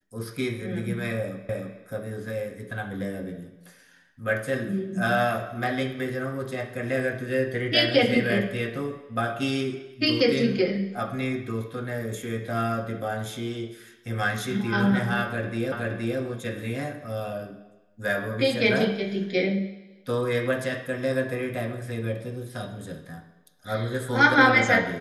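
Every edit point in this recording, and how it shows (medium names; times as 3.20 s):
1.49 s: repeat of the last 0.31 s
15.72 s: repeat of the last 0.47 s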